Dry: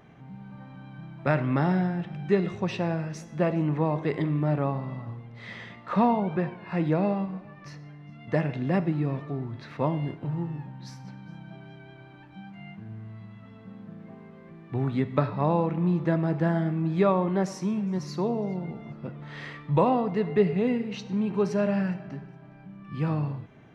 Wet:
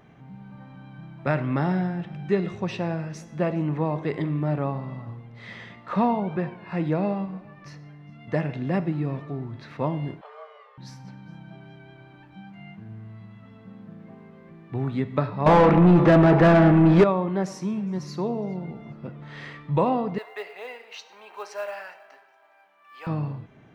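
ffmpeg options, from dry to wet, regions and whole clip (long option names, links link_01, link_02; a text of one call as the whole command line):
ffmpeg -i in.wav -filter_complex "[0:a]asettb=1/sr,asplit=3[link_01][link_02][link_03];[link_01]atrim=end=10.214[link_04];[link_02]atrim=start=10.21:end=10.78,asetpts=PTS-STARTPTS,afade=type=in:duration=0.004:curve=qsin,afade=type=out:start_time=0.566:duration=0.004:curve=qsin,highpass=520,lowpass=5600,afreqshift=290[link_05];[link_03]atrim=start=10.776[link_06];[link_04][link_05]acrossfade=duration=0.004:curve1=hsin:curve2=qsin[link_07];[link_07][link_06]acrossfade=duration=0.004:curve1=qsin:curve2=hsin,asettb=1/sr,asplit=3[link_08][link_09][link_10];[link_08]atrim=end=15.464[link_11];[link_09]atrim=start=15.46:end=17.04,asetpts=PTS-STARTPTS,afade=type=in:duration=0.004:curve=qsin,afade=type=out:start_time=1.576:duration=0.004:curve=qsin,acontrast=45,asplit=2[link_12][link_13];[link_13]highpass=frequency=720:poles=1,volume=27dB,asoftclip=type=tanh:threshold=-6.5dB[link_14];[link_12][link_14]amix=inputs=2:normalize=0,lowpass=frequency=1000:poles=1,volume=-6dB[link_15];[link_10]atrim=start=17.036[link_16];[link_11][link_15]acrossfade=duration=0.004:curve1=hsin:curve2=qsin[link_17];[link_17][link_16]acrossfade=duration=0.004:curve1=qsin:curve2=hsin,asettb=1/sr,asplit=3[link_18][link_19][link_20];[link_18]atrim=end=20.184[link_21];[link_19]atrim=start=20.18:end=23.07,asetpts=PTS-STARTPTS,afade=type=in:duration=0.004:curve=qsin,afade=type=out:start_time=2.886:duration=0.004:curve=qsin,highpass=frequency=640:width=0.5412,highpass=frequency=640:width=1.3066,acrusher=bits=7:mode=log:mix=0:aa=0.000001[link_22];[link_20]atrim=start=23.066[link_23];[link_21][link_22]acrossfade=duration=0.004:curve1=hsin:curve2=qsin[link_24];[link_24][link_23]acrossfade=duration=0.004:curve1=qsin:curve2=hsin" out.wav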